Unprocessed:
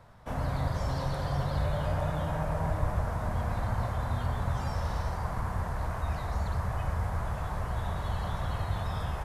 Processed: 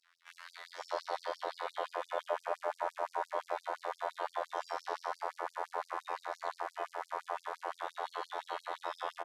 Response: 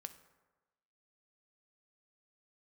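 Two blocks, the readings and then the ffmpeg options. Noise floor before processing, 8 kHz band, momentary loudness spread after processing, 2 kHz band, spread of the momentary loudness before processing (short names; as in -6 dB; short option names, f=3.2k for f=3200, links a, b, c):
-36 dBFS, -7.5 dB, 4 LU, -3.0 dB, 3 LU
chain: -filter_complex "[0:a]afftfilt=real='hypot(re,im)*cos(PI*b)':imag='0':win_size=2048:overlap=0.75,aemphasis=mode=reproduction:type=75fm,acrossover=split=1700[a][b];[a]adelay=530[c];[c][b]amix=inputs=2:normalize=0,afftfilt=real='re*gte(b*sr/1024,300*pow(4600/300,0.5+0.5*sin(2*PI*5.8*pts/sr)))':imag='im*gte(b*sr/1024,300*pow(4600/300,0.5+0.5*sin(2*PI*5.8*pts/sr)))':win_size=1024:overlap=0.75,volume=7dB"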